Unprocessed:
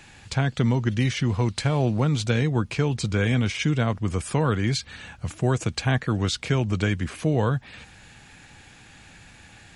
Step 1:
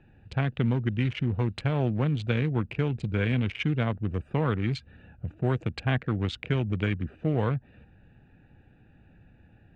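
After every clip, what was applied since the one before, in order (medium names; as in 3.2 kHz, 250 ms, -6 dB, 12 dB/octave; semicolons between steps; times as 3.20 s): local Wiener filter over 41 samples; elliptic low-pass 9.3 kHz; resonant high shelf 4.1 kHz -12 dB, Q 1.5; trim -2.5 dB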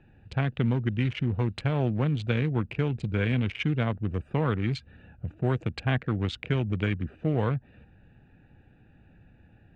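no audible change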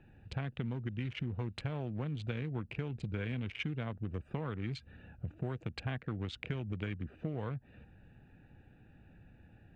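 compression, threshold -32 dBFS, peak gain reduction 11 dB; trim -2.5 dB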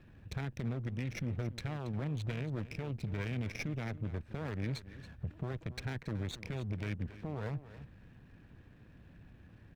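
comb filter that takes the minimum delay 0.49 ms; peak limiter -31.5 dBFS, peak gain reduction 8 dB; delay 278 ms -15 dB; trim +2.5 dB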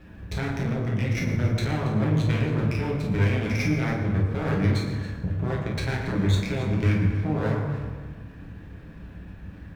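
reverberation RT60 1.5 s, pre-delay 8 ms, DRR -5 dB; trim +7.5 dB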